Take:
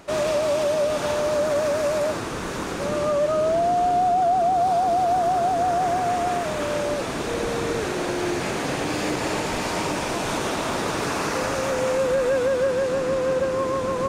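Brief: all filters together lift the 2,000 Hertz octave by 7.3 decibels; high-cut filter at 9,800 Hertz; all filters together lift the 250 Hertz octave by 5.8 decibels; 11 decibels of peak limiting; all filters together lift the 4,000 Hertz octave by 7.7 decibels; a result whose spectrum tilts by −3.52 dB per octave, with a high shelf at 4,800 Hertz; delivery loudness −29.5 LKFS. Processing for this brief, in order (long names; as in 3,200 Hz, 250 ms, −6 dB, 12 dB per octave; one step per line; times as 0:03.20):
low-pass filter 9,800 Hz
parametric band 250 Hz +7.5 dB
parametric band 2,000 Hz +7 dB
parametric band 4,000 Hz +4 dB
high-shelf EQ 4,800 Hz +7.5 dB
level −2.5 dB
brickwall limiter −22 dBFS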